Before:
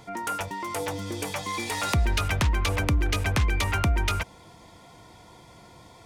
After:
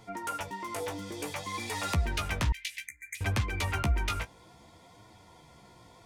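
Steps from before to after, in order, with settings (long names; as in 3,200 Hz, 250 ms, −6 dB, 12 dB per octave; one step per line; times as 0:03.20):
0:02.86–0:03.15: time-frequency box erased 2,400–6,200 Hz
flanger 0.59 Hz, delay 8.9 ms, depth 9.6 ms, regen +20%
0:02.52–0:03.21: elliptic high-pass filter 1,900 Hz, stop band 40 dB
level −2 dB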